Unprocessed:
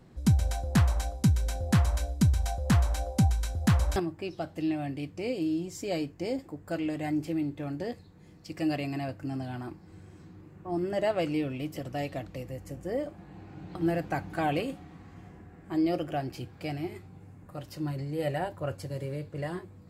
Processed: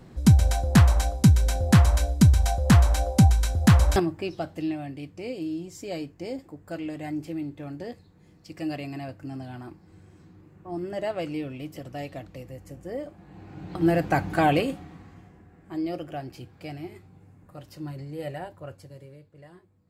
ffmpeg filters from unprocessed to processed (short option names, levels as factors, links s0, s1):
-af "volume=7.94,afade=t=out:st=3.94:d=0.91:silence=0.354813,afade=t=in:st=13.2:d=1.08:silence=0.281838,afade=t=out:st=14.28:d=1.01:silence=0.251189,afade=t=out:st=18.15:d=1.11:silence=0.251189"